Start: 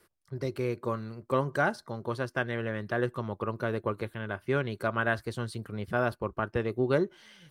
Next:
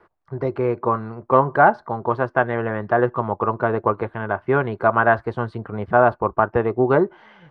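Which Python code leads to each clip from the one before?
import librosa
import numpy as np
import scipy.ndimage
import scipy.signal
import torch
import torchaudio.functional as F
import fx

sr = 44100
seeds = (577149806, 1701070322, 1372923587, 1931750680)

y = scipy.signal.sosfilt(scipy.signal.butter(2, 1800.0, 'lowpass', fs=sr, output='sos'), x)
y = fx.peak_eq(y, sr, hz=830.0, db=12.0, octaves=1.4)
y = fx.notch(y, sr, hz=560.0, q=12.0)
y = F.gain(torch.from_numpy(y), 6.5).numpy()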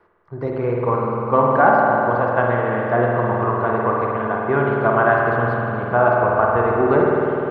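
y = fx.rev_spring(x, sr, rt60_s=3.5, pass_ms=(50,), chirp_ms=30, drr_db=-3.0)
y = F.gain(torch.from_numpy(y), -2.5).numpy()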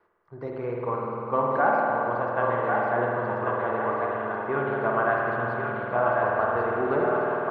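y = fx.low_shelf(x, sr, hz=210.0, db=-6.0)
y = fx.echo_thinned(y, sr, ms=1089, feedback_pct=46, hz=530.0, wet_db=-3.0)
y = F.gain(torch.from_numpy(y), -8.0).numpy()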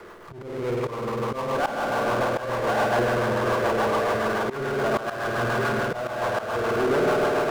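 y = fx.rotary(x, sr, hz=7.0)
y = fx.auto_swell(y, sr, attack_ms=459.0)
y = fx.power_curve(y, sr, exponent=0.5)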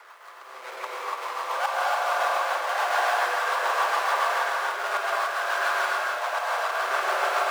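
y = scipy.signal.sosfilt(scipy.signal.butter(4, 730.0, 'highpass', fs=sr, output='sos'), x)
y = fx.hpss(y, sr, part='percussive', gain_db=6)
y = fx.rev_gated(y, sr, seeds[0], gate_ms=310, shape='rising', drr_db=-3.0)
y = F.gain(torch.from_numpy(y), -5.0).numpy()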